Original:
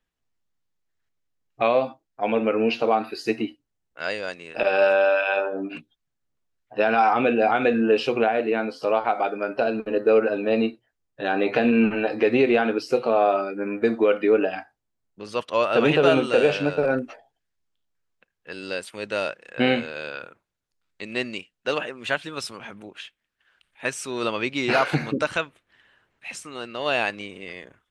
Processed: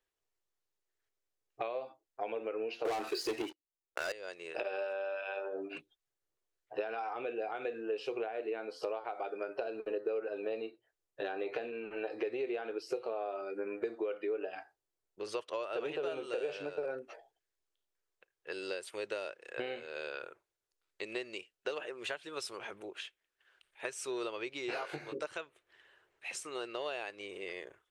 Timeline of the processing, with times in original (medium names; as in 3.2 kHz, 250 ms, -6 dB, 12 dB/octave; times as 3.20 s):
2.85–4.12 s: waveshaping leveller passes 5
24.67–25.26 s: doubling 20 ms -3 dB
whole clip: peaking EQ 8.2 kHz +3 dB 1.4 oct; compression 10:1, threshold -31 dBFS; resonant low shelf 300 Hz -7 dB, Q 3; trim -5.5 dB